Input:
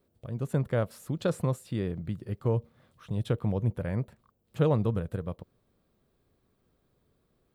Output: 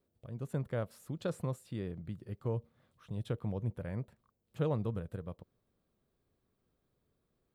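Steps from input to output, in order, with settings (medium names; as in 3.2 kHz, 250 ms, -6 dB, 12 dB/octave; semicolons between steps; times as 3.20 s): trim -8 dB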